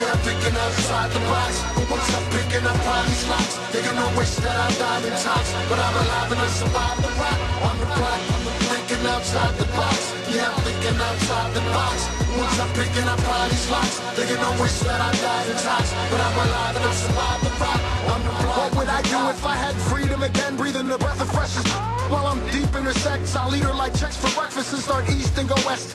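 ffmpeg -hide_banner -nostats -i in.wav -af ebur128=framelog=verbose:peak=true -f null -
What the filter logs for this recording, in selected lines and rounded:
Integrated loudness:
  I:         -21.8 LUFS
  Threshold: -31.8 LUFS
Loudness range:
  LRA:         1.3 LU
  Threshold: -41.8 LUFS
  LRA low:   -22.5 LUFS
  LRA high:  -21.2 LUFS
True peak:
  Peak:       -6.3 dBFS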